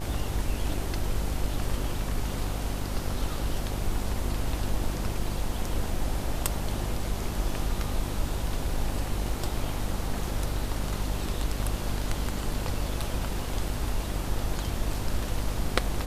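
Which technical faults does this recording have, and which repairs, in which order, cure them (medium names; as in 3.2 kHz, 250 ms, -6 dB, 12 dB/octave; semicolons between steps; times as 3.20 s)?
buzz 50 Hz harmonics 19 -33 dBFS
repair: de-hum 50 Hz, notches 19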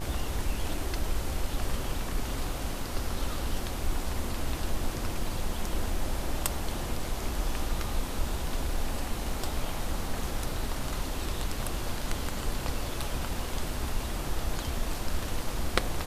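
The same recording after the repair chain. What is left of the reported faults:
nothing left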